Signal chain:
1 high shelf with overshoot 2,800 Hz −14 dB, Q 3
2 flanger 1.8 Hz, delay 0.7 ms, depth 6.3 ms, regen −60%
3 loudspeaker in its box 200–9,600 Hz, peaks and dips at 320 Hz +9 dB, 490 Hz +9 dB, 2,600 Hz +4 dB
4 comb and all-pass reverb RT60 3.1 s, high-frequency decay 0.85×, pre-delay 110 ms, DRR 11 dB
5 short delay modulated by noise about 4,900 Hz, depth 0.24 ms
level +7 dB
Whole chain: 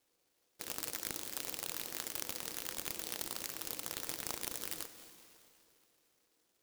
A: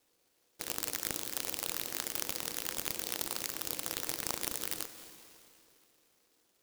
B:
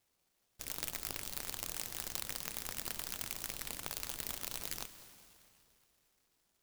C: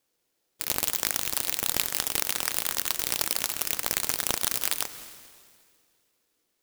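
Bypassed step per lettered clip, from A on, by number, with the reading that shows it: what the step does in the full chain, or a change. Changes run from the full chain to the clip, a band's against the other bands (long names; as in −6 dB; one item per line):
2, change in integrated loudness +4.0 LU
3, change in crest factor +2.0 dB
1, 250 Hz band −5.0 dB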